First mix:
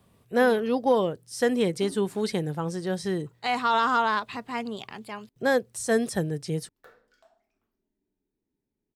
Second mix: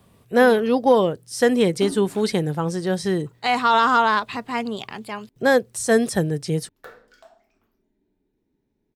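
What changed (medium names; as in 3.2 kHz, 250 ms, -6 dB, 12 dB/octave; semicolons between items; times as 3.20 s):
speech +6.0 dB; background +11.0 dB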